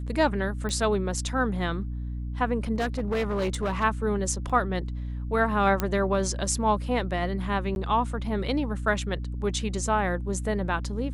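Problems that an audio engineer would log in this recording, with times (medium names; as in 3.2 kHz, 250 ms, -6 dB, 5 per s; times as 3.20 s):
hum 60 Hz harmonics 5 -32 dBFS
0.69 s: pop -20 dBFS
2.76–3.84 s: clipped -22.5 dBFS
4.49–4.50 s: dropout 5.9 ms
5.80 s: pop -11 dBFS
7.75–7.76 s: dropout 11 ms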